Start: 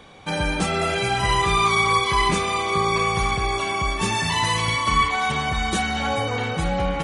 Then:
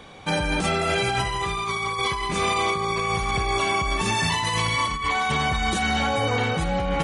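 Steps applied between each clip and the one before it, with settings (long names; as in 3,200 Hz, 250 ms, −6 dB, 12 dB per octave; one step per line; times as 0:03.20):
compressor whose output falls as the input rises −24 dBFS, ratio −1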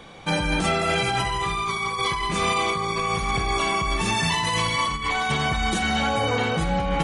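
rectangular room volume 820 cubic metres, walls furnished, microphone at 0.74 metres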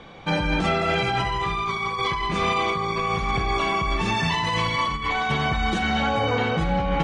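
high-frequency loss of the air 130 metres
level +1 dB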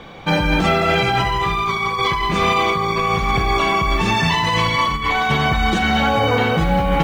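noise that follows the level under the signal 34 dB
level +6 dB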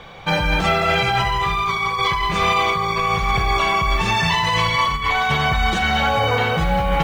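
parametric band 270 Hz −10.5 dB 1 octave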